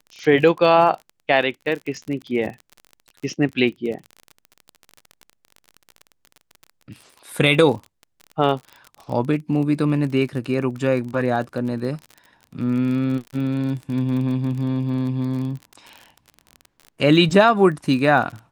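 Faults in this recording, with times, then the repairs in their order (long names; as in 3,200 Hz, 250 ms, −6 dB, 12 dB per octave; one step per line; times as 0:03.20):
surface crackle 35 per second −29 dBFS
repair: click removal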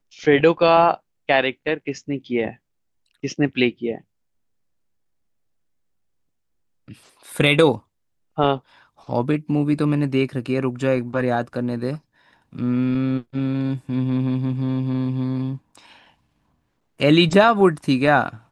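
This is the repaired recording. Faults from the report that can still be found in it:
none of them is left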